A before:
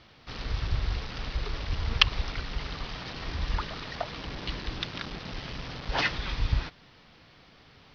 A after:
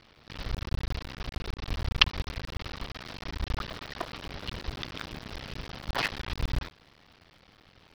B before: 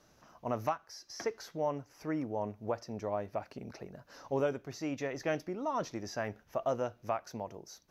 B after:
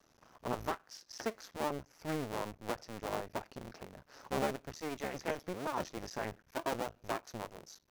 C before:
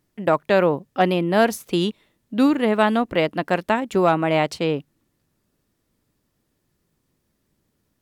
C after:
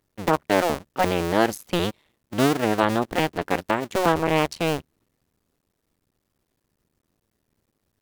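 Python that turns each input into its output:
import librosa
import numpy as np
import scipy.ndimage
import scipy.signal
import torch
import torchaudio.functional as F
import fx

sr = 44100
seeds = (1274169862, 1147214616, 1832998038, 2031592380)

y = fx.cycle_switch(x, sr, every=2, mode='muted')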